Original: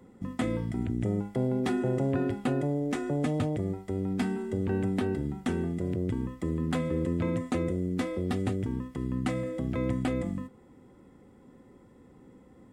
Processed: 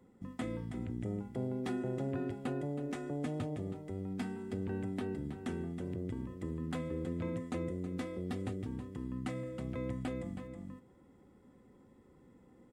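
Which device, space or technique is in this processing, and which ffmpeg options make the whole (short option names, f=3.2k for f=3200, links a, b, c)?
ducked delay: -filter_complex "[0:a]asplit=3[a][b][c];[b]adelay=321,volume=-2dB[d];[c]apad=whole_len=575349[e];[d][e]sidechaincompress=threshold=-35dB:ratio=8:attack=10:release=552[f];[a][f]amix=inputs=2:normalize=0,volume=-9dB"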